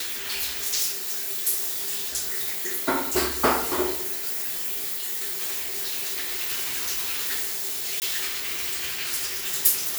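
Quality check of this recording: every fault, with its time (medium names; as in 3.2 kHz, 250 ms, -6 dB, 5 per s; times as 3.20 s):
8.00–8.02 s: dropout 19 ms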